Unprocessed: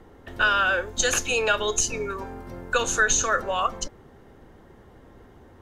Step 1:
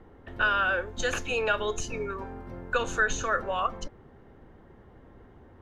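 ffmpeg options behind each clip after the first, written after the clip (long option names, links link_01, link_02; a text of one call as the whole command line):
ffmpeg -i in.wav -af "bass=frequency=250:gain=2,treble=frequency=4000:gain=-13,volume=-3.5dB" out.wav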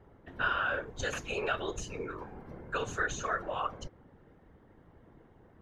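ffmpeg -i in.wav -af "afftfilt=real='hypot(re,im)*cos(2*PI*random(0))':imag='hypot(re,im)*sin(2*PI*random(1))':win_size=512:overlap=0.75" out.wav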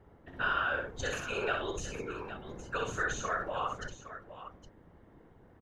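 ffmpeg -i in.wav -af "aecho=1:1:62|814:0.596|0.251,volume=-1.5dB" out.wav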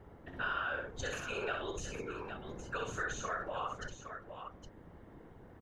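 ffmpeg -i in.wav -af "acompressor=threshold=-54dB:ratio=1.5,volume=4dB" out.wav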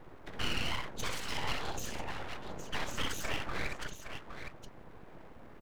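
ffmpeg -i in.wav -af "aeval=exprs='abs(val(0))':channel_layout=same,volume=5dB" out.wav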